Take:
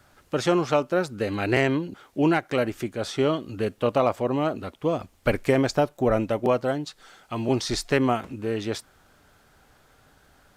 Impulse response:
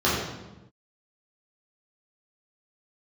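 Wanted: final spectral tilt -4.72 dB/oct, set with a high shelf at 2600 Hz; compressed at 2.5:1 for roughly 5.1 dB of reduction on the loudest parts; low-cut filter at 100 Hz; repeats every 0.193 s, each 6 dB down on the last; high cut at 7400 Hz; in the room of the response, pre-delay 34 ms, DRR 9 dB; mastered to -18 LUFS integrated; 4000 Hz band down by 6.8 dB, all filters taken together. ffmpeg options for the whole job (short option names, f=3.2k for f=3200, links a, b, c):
-filter_complex "[0:a]highpass=100,lowpass=7.4k,highshelf=f=2.6k:g=-6.5,equalizer=f=4k:t=o:g=-3,acompressor=threshold=-24dB:ratio=2.5,aecho=1:1:193|386|579|772|965|1158:0.501|0.251|0.125|0.0626|0.0313|0.0157,asplit=2[a][b];[1:a]atrim=start_sample=2205,adelay=34[c];[b][c]afir=irnorm=-1:irlink=0,volume=-26.5dB[d];[a][d]amix=inputs=2:normalize=0,volume=9.5dB"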